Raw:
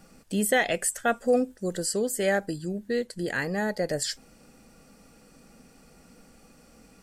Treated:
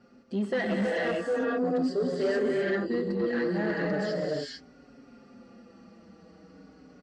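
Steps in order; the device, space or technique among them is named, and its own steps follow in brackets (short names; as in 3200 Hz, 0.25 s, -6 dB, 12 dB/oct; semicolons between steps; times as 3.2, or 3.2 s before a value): non-linear reverb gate 0.48 s rising, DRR -3.5 dB; barber-pole flanger into a guitar amplifier (endless flanger 5.2 ms -0.39 Hz; soft clip -23.5 dBFS, distortion -12 dB; speaker cabinet 81–4300 Hz, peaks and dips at 130 Hz -5 dB, 260 Hz +5 dB, 390 Hz +4 dB, 890 Hz -3 dB, 2400 Hz -8 dB, 3500 Hz -7 dB)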